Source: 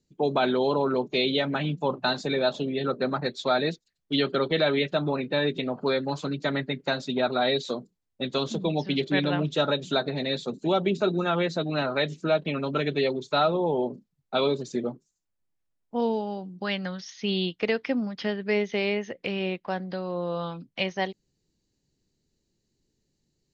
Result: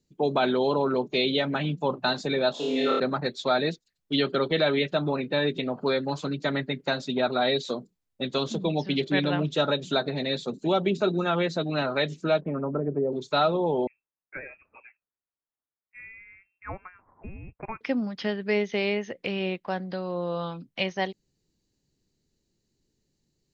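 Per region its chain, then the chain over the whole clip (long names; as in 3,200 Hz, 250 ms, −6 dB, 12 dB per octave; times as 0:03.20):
0:02.54–0:03.00: high-pass filter 320 Hz + flutter between parallel walls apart 4.6 metres, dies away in 1.3 s
0:12.41–0:13.13: low-pass filter 1,400 Hz 24 dB per octave + treble cut that deepens with the level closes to 570 Hz, closed at −22.5 dBFS
0:13.87–0:17.81: Bessel high-pass filter 2,100 Hz + voice inversion scrambler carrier 2,900 Hz
whole clip: no processing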